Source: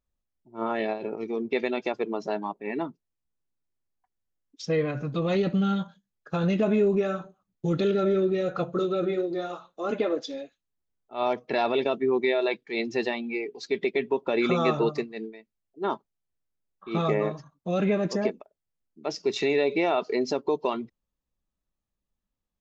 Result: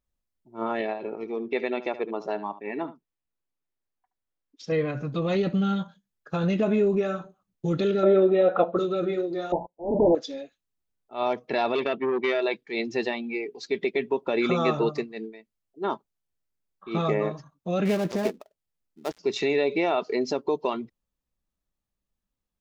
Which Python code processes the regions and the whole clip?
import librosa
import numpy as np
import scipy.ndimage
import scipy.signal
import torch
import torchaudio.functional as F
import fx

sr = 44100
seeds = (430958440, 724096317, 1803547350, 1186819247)

y = fx.chain(x, sr, fx.bass_treble(bass_db=-6, treble_db=-8),
    fx.echo_single(ms=73, db=-14.5), at=(0.81, 4.72))
y = fx.chain(y, sr, fx.brickwall_bandpass(low_hz=170.0, high_hz=4000.0),
    fx.peak_eq(hz=710.0, db=12.0, octaves=1.4), at=(8.03, 8.77))
y = fx.chain(y, sr, fx.leveller(passes=5),
    fx.auto_swell(attack_ms=258.0),
    fx.brickwall_lowpass(high_hz=1000.0), at=(9.52, 10.15))
y = fx.chain(y, sr, fx.lowpass_res(hz=2800.0, q=1.5),
    fx.transformer_sat(knee_hz=910.0), at=(11.75, 12.42))
y = fx.chain(y, sr, fx.dead_time(dead_ms=0.14),
    fx.doppler_dist(depth_ms=0.15), at=(17.85, 19.19))